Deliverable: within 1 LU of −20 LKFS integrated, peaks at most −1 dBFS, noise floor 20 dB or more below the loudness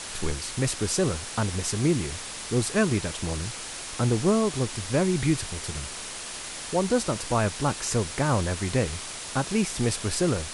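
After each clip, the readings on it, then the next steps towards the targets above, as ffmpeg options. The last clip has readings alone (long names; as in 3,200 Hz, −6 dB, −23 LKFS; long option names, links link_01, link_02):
background noise floor −37 dBFS; target noise floor −47 dBFS; integrated loudness −27.0 LKFS; sample peak −11.0 dBFS; target loudness −20.0 LKFS
→ -af "afftdn=noise_reduction=10:noise_floor=-37"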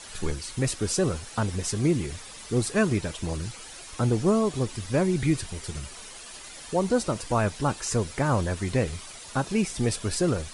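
background noise floor −43 dBFS; target noise floor −47 dBFS
→ -af "afftdn=noise_reduction=6:noise_floor=-43"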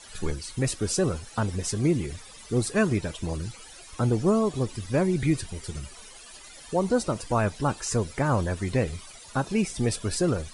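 background noise floor −47 dBFS; integrated loudness −27.0 LKFS; sample peak −11.5 dBFS; target loudness −20.0 LKFS
→ -af "volume=7dB"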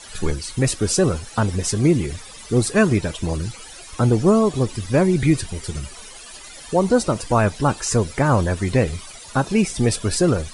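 integrated loudness −20.0 LKFS; sample peak −4.5 dBFS; background noise floor −40 dBFS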